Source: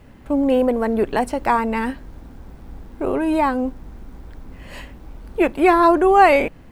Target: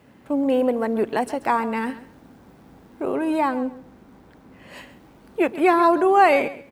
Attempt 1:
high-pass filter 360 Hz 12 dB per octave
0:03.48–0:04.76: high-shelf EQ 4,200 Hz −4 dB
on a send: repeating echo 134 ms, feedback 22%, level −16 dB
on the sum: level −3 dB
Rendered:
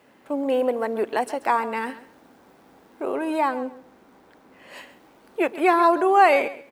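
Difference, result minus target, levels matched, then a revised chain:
125 Hz band −8.5 dB
high-pass filter 150 Hz 12 dB per octave
0:03.48–0:04.76: high-shelf EQ 4,200 Hz −4 dB
on a send: repeating echo 134 ms, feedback 22%, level −16 dB
on the sum: level −3 dB

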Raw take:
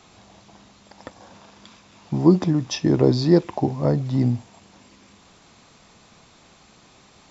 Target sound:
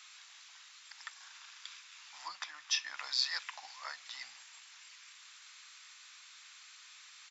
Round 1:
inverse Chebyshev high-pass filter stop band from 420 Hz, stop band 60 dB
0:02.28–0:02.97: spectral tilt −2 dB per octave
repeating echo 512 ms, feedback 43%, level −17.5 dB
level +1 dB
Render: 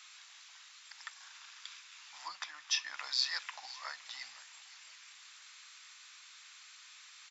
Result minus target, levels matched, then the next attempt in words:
echo-to-direct +8.5 dB
inverse Chebyshev high-pass filter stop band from 420 Hz, stop band 60 dB
0:02.28–0:02.97: spectral tilt −2 dB per octave
repeating echo 512 ms, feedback 43%, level −26 dB
level +1 dB

